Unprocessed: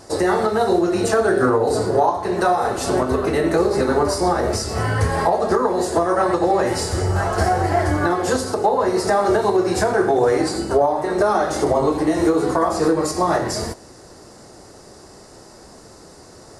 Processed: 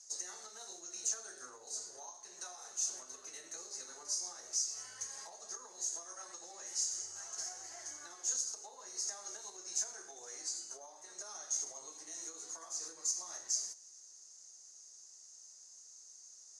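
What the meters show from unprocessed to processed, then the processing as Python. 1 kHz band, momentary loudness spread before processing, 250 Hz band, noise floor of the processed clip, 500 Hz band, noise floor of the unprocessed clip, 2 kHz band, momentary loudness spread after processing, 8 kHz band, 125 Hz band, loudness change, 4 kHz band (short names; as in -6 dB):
-35.5 dB, 4 LU, under -40 dB, -58 dBFS, under -40 dB, -44 dBFS, -29.5 dB, 18 LU, -3.5 dB, under -40 dB, -21.0 dB, -14.0 dB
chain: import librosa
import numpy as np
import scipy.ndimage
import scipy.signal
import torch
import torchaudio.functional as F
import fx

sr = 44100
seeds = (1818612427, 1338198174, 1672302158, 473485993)

y = fx.bandpass_q(x, sr, hz=6400.0, q=14.0)
y = y * 10.0 ** (5.0 / 20.0)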